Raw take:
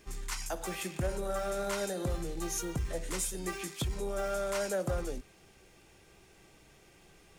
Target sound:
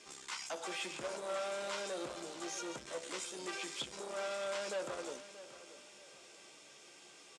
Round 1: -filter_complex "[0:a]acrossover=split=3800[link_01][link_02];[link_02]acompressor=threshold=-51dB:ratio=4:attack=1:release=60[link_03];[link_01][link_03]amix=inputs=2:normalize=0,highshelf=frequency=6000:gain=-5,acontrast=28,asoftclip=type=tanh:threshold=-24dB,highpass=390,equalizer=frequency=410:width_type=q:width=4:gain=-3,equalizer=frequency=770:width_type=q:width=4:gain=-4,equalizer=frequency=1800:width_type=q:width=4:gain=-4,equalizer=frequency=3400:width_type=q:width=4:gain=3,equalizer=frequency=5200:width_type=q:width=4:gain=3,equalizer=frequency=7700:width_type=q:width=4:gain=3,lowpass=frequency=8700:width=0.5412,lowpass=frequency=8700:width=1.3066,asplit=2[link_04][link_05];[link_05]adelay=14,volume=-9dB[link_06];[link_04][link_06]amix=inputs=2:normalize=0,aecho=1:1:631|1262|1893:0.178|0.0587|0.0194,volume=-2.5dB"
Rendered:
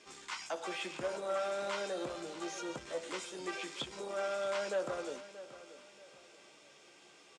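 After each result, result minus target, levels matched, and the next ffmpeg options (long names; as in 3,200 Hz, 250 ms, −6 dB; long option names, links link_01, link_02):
8,000 Hz band −5.5 dB; soft clipping: distortion −8 dB
-filter_complex "[0:a]acrossover=split=3800[link_01][link_02];[link_02]acompressor=threshold=-51dB:ratio=4:attack=1:release=60[link_03];[link_01][link_03]amix=inputs=2:normalize=0,highshelf=frequency=6000:gain=5,acontrast=28,asoftclip=type=tanh:threshold=-24dB,highpass=390,equalizer=frequency=410:width_type=q:width=4:gain=-3,equalizer=frequency=770:width_type=q:width=4:gain=-4,equalizer=frequency=1800:width_type=q:width=4:gain=-4,equalizer=frequency=3400:width_type=q:width=4:gain=3,equalizer=frequency=5200:width_type=q:width=4:gain=3,equalizer=frequency=7700:width_type=q:width=4:gain=3,lowpass=frequency=8700:width=0.5412,lowpass=frequency=8700:width=1.3066,asplit=2[link_04][link_05];[link_05]adelay=14,volume=-9dB[link_06];[link_04][link_06]amix=inputs=2:normalize=0,aecho=1:1:631|1262|1893:0.178|0.0587|0.0194,volume=-2.5dB"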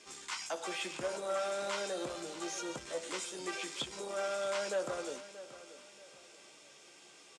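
soft clipping: distortion −8 dB
-filter_complex "[0:a]acrossover=split=3800[link_01][link_02];[link_02]acompressor=threshold=-51dB:ratio=4:attack=1:release=60[link_03];[link_01][link_03]amix=inputs=2:normalize=0,highshelf=frequency=6000:gain=5,acontrast=28,asoftclip=type=tanh:threshold=-31.5dB,highpass=390,equalizer=frequency=410:width_type=q:width=4:gain=-3,equalizer=frequency=770:width_type=q:width=4:gain=-4,equalizer=frequency=1800:width_type=q:width=4:gain=-4,equalizer=frequency=3400:width_type=q:width=4:gain=3,equalizer=frequency=5200:width_type=q:width=4:gain=3,equalizer=frequency=7700:width_type=q:width=4:gain=3,lowpass=frequency=8700:width=0.5412,lowpass=frequency=8700:width=1.3066,asplit=2[link_04][link_05];[link_05]adelay=14,volume=-9dB[link_06];[link_04][link_06]amix=inputs=2:normalize=0,aecho=1:1:631|1262|1893:0.178|0.0587|0.0194,volume=-2.5dB"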